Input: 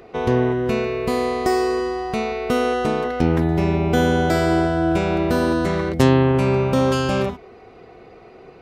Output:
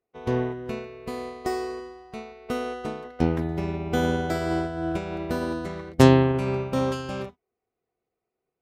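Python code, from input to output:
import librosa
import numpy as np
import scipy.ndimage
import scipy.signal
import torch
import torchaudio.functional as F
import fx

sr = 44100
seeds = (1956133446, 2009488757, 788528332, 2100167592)

y = fx.cheby_harmonics(x, sr, harmonics=(2,), levels_db=(-17,), full_scale_db=-2.0)
y = fx.upward_expand(y, sr, threshold_db=-39.0, expansion=2.5)
y = F.gain(torch.from_numpy(y), 1.0).numpy()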